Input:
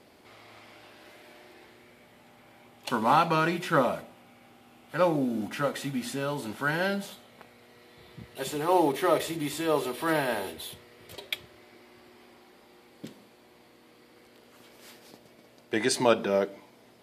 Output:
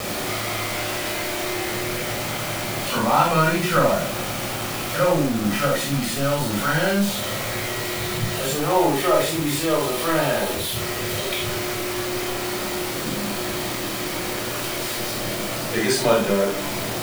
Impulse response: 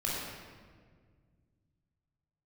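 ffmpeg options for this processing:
-filter_complex "[0:a]aeval=exprs='val(0)+0.5*0.0631*sgn(val(0))':c=same[s0];[1:a]atrim=start_sample=2205,atrim=end_sample=3969[s1];[s0][s1]afir=irnorm=-1:irlink=0,acrusher=bits=4:mix=0:aa=0.000001,volume=0.841"

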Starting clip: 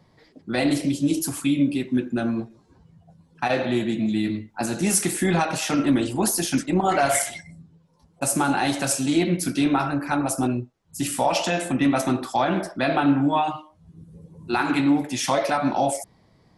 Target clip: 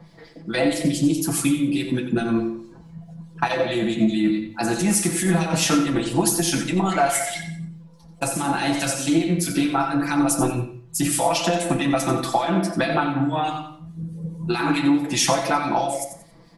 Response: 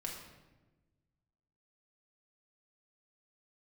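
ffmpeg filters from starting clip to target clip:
-filter_complex "[0:a]lowshelf=f=180:g=-4.5,aecho=1:1:6:0.77,acompressor=threshold=0.0562:ratio=6,acrossover=split=2100[s0][s1];[s0]aeval=exprs='val(0)*(1-0.7/2+0.7/2*cos(2*PI*4.7*n/s))':c=same[s2];[s1]aeval=exprs='val(0)*(1-0.7/2-0.7/2*cos(2*PI*4.7*n/s))':c=same[s3];[s2][s3]amix=inputs=2:normalize=0,aecho=1:1:90|180|270:0.299|0.0776|0.0202,asplit=2[s4][s5];[1:a]atrim=start_sample=2205,afade=t=out:st=0.23:d=0.01,atrim=end_sample=10584,lowshelf=f=150:g=8[s6];[s5][s6]afir=irnorm=-1:irlink=0,volume=0.668[s7];[s4][s7]amix=inputs=2:normalize=0,volume=2"

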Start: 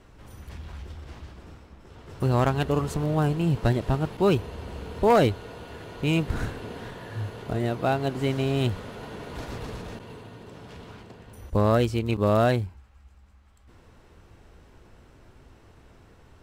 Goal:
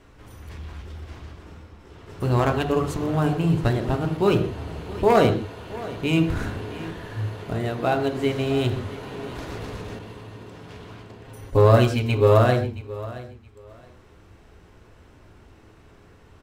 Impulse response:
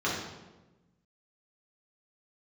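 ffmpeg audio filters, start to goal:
-filter_complex "[0:a]asettb=1/sr,asplit=3[s0][s1][s2];[s0]atrim=end=11.244[s3];[s1]atrim=start=11.24:end=12.39,asetpts=PTS-STARTPTS,afade=t=in:d=0.004:c=qsin,afade=t=out:st=1.146:d=0.004:c=qsin,aecho=1:1:7.4:1,atrim=end_sample=50715[s4];[s2]atrim=start=12.386[s5];[s3][s4]acrossfade=d=0.004:c1=hsin:c2=qsin[s6];[s6][s5]acrossfade=d=0.004:c1=qsin:c2=hsin,aecho=1:1:672|1344:0.141|0.0283,asplit=2[s7][s8];[1:a]atrim=start_sample=2205,afade=t=out:st=0.21:d=0.01,atrim=end_sample=9702[s9];[s8][s9]afir=irnorm=-1:irlink=0,volume=0.2[s10];[s7][s10]amix=inputs=2:normalize=0"

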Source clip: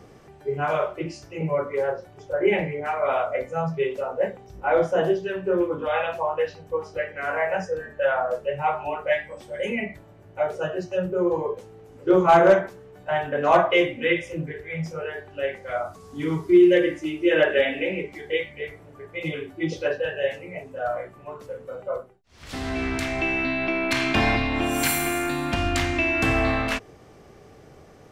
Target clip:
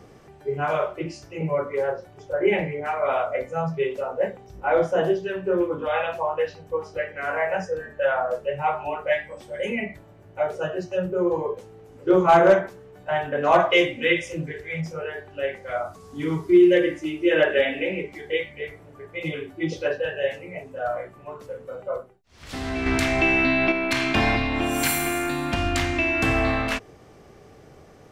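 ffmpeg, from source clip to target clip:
-filter_complex "[0:a]asettb=1/sr,asplit=3[s0][s1][s2];[s0]atrim=end=13.604[s3];[s1]atrim=start=13.6:end=14.81,asetpts=PTS-STARTPTS,afade=t=in:d=0.004:c=qsin,afade=t=out:st=1.206:d=0.004:c=qsin,equalizer=f=6300:w=0.57:g=8[s4];[s2]atrim=start=14.806[s5];[s3][s4]acrossfade=d=0.004:c1=hsin:c2=qsin[s6];[s6][s5]acrossfade=d=0.004:c1=qsin:c2=hsin,asettb=1/sr,asplit=3[s7][s8][s9];[s7]atrim=end=22.864[s10];[s8]atrim=start=22.86:end=23.72,asetpts=PTS-STARTPTS,afade=t=in:d=0.004:c=qsin,afade=t=out:st=0.856:d=0.004:c=qsin,acontrast=26[s11];[s9]atrim=start=23.716[s12];[s10][s11]acrossfade=d=0.004:c1=hsin:c2=qsin[s13];[s13][s12]acrossfade=d=0.004:c1=qsin:c2=hsin"

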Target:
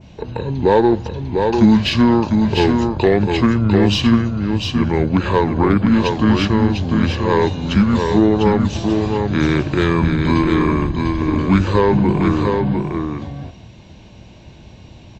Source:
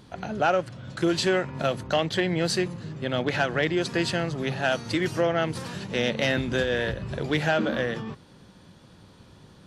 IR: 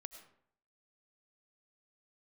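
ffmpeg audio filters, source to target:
-filter_complex "[0:a]asplit=2[s0][s1];[1:a]atrim=start_sample=2205,atrim=end_sample=3969,asetrate=27783,aresample=44100[s2];[s1][s2]afir=irnorm=-1:irlink=0,volume=0.841[s3];[s0][s3]amix=inputs=2:normalize=0,asetrate=28048,aresample=44100,equalizer=f=200:t=o:w=0.33:g=4,equalizer=f=1250:t=o:w=0.33:g=-9,equalizer=f=2000:t=o:w=0.33:g=-8,equalizer=f=4000:t=o:w=0.33:g=5,aeval=exprs='0.422*(cos(1*acos(clip(val(0)/0.422,-1,1)))-cos(1*PI/2))+0.00668*(cos(8*acos(clip(val(0)/0.422,-1,1)))-cos(8*PI/2))':c=same,adynamicequalizer=threshold=0.00708:dfrequency=3900:dqfactor=0.85:tfrequency=3900:tqfactor=0.85:attack=5:release=100:ratio=0.375:range=2:mode=cutabove:tftype=bell,asplit=2[s4][s5];[s5]aecho=0:1:699:0.596[s6];[s4][s6]amix=inputs=2:normalize=0,volume=1.88"

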